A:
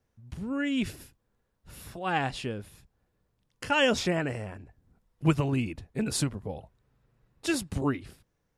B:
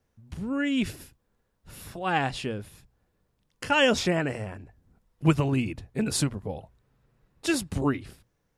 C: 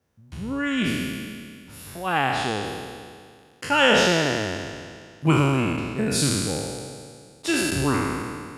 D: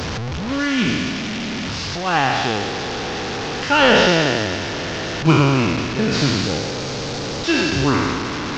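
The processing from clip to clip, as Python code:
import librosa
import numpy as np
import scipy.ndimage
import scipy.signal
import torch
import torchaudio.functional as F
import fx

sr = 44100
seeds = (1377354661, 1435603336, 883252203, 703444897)

y1 = fx.hum_notches(x, sr, base_hz=60, count=2)
y1 = y1 * 10.0 ** (2.5 / 20.0)
y2 = fx.spec_trails(y1, sr, decay_s=2.05)
y2 = scipy.signal.sosfilt(scipy.signal.butter(2, 67.0, 'highpass', fs=sr, output='sos'), y2)
y3 = fx.delta_mod(y2, sr, bps=32000, step_db=-24.0)
y3 = y3 * 10.0 ** (5.0 / 20.0)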